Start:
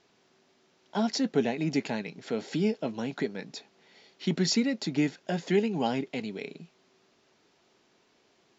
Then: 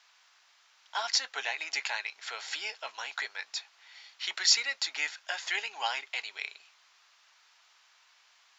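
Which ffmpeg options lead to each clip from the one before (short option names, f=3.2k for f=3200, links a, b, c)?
-af "highpass=f=1k:w=0.5412,highpass=f=1k:w=1.3066,volume=6.5dB"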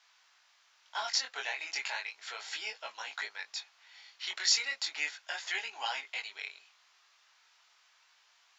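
-af "flanger=delay=18:depth=5.6:speed=0.35"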